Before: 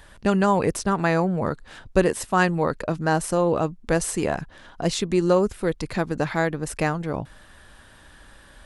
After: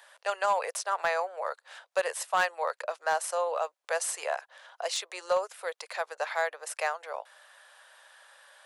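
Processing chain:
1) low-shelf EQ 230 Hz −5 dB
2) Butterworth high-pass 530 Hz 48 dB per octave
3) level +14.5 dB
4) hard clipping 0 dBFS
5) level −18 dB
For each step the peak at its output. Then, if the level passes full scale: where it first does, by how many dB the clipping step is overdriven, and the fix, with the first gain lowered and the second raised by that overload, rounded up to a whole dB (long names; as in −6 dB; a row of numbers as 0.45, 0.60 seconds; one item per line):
−5.0, −8.5, +6.0, 0.0, −18.0 dBFS
step 3, 6.0 dB
step 3 +8.5 dB, step 5 −12 dB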